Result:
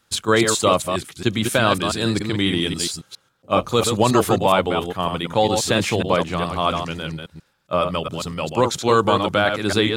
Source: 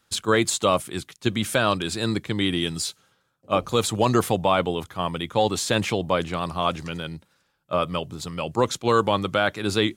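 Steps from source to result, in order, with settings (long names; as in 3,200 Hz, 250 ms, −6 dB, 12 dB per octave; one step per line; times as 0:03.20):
delay that plays each chunk backwards 137 ms, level −5.5 dB
level +3 dB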